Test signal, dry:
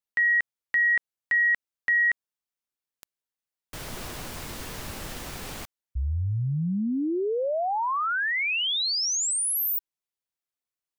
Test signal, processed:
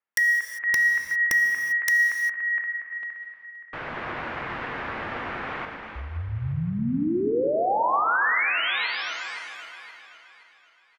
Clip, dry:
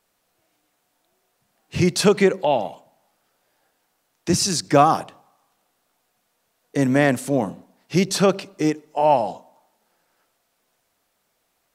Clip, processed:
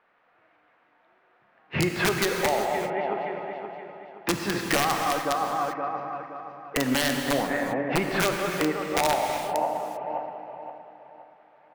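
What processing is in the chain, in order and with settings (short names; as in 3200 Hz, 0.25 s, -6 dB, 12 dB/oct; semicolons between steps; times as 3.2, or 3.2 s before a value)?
regenerating reverse delay 0.261 s, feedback 60%, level -12 dB; LPF 1900 Hz 24 dB/oct; tilt +4 dB/oct; on a send: feedback echo 0.223 s, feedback 23%, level -22.5 dB; on the sum: compressor 6:1, threshold -31 dBFS; wrapped overs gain 24 dB; non-linear reverb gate 0.42 s flat, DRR 3.5 dB; ending taper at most 360 dB/s; gain +8.5 dB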